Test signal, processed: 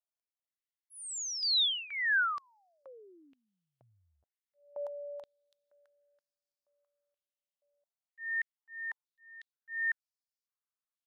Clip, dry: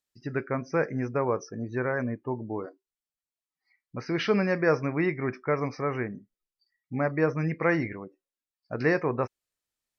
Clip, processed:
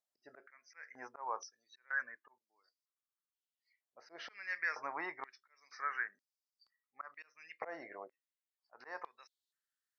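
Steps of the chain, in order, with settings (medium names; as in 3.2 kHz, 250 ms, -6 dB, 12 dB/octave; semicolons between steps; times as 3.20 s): slow attack 296 ms; peaking EQ 2.4 kHz -9.5 dB 0.32 oct; step-sequenced high-pass 2.1 Hz 660–4900 Hz; trim -8 dB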